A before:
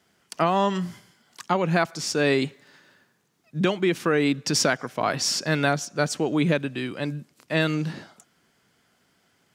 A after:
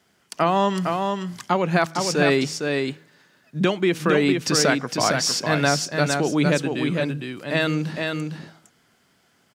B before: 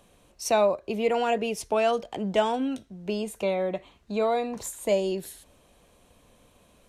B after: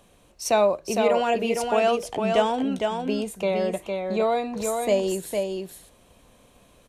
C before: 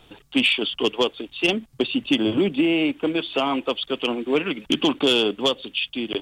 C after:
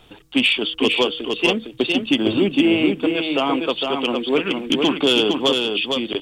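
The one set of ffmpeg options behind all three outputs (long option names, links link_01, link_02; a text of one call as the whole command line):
ffmpeg -i in.wav -filter_complex "[0:a]bandreject=frequency=160.2:width_type=h:width=4,bandreject=frequency=320.4:width_type=h:width=4,bandreject=frequency=480.6:width_type=h:width=4,asplit=2[link_01][link_02];[link_02]aecho=0:1:458:0.596[link_03];[link_01][link_03]amix=inputs=2:normalize=0,volume=2dB" out.wav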